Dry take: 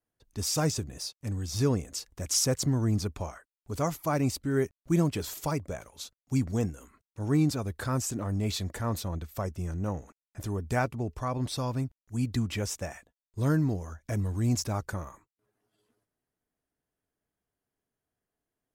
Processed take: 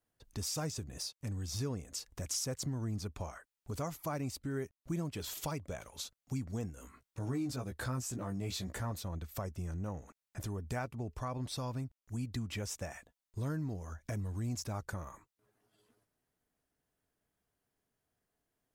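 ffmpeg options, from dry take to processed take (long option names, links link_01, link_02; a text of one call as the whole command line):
ffmpeg -i in.wav -filter_complex "[0:a]asettb=1/sr,asplit=3[link_01][link_02][link_03];[link_01]atrim=end=5.174[link_04];[link_02]atrim=start=5.17:end=5.88,asetpts=PTS-STARTPTS,afade=type=in:duration=0.004:curve=qsin,afade=type=out:start_time=0.706:duration=0.004:curve=qsin,equalizer=frequency=3200:width_type=o:width=0.74:gain=5.5[link_05];[link_03]atrim=start=5.876[link_06];[link_04][link_05]acrossfade=duration=0.004:curve1=hsin:curve2=qsin[link_07];[link_07][link_06]acrossfade=duration=0.004:curve1=qsin:curve2=hsin,asettb=1/sr,asplit=3[link_08][link_09][link_10];[link_08]atrim=end=6.754[link_11];[link_09]atrim=start=6.75:end=8.92,asetpts=PTS-STARTPTS,afade=type=in:duration=0.004:curve=qsin,afade=type=out:start_time=2.166:duration=0.004:curve=qsin,asplit=2[link_12][link_13];[link_13]adelay=16,volume=-4dB[link_14];[link_12][link_14]amix=inputs=2:normalize=0,atrim=end_sample=95697[link_15];[link_10]atrim=start=8.916[link_16];[link_11][link_15]acrossfade=duration=0.004:curve1=hsin:curve2=qsin[link_17];[link_17][link_16]acrossfade=duration=0.004:curve1=qsin:curve2=hsin,equalizer=frequency=340:width=1.5:gain=-2,acompressor=threshold=-44dB:ratio=2.5,volume=3dB" out.wav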